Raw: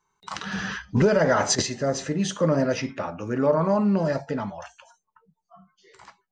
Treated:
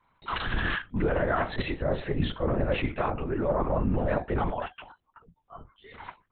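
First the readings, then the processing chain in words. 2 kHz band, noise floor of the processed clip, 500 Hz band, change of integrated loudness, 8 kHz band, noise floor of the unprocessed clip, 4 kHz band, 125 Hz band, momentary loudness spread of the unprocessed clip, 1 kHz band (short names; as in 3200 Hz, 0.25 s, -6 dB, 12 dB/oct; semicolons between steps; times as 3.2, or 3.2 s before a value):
-1.5 dB, -74 dBFS, -5.5 dB, -5.0 dB, under -40 dB, -79 dBFS, -6.5 dB, -3.0 dB, 12 LU, -2.0 dB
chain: reverse; compressor 6:1, threshold -30 dBFS, peak gain reduction 14.5 dB; reverse; LPC vocoder at 8 kHz whisper; gain +6 dB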